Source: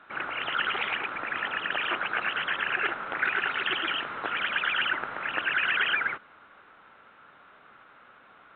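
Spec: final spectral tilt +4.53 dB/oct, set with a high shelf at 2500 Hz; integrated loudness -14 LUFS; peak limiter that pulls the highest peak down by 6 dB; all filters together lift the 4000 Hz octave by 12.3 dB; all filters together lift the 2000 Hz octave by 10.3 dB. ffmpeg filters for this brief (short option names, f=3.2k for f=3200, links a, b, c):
-af "equalizer=f=2k:t=o:g=8,highshelf=f=2.5k:g=9,equalizer=f=4k:t=o:g=6,volume=5dB,alimiter=limit=-4.5dB:level=0:latency=1"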